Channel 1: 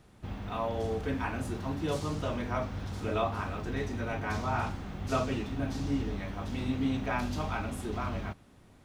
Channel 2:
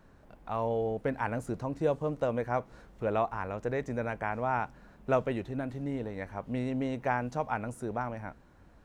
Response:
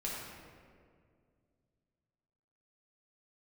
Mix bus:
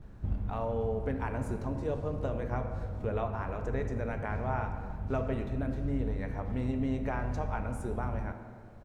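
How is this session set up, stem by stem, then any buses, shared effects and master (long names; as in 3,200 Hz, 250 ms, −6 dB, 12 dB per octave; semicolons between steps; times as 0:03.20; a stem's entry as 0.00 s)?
−4.5 dB, 0.00 s, no send, spectral tilt −4.5 dB per octave; automatic ducking −11 dB, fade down 0.75 s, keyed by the second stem
−4.5 dB, 18 ms, polarity flipped, send −4 dB, downward compressor 2 to 1, threshold −34 dBFS, peak gain reduction 7.5 dB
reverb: on, RT60 2.1 s, pre-delay 4 ms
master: no processing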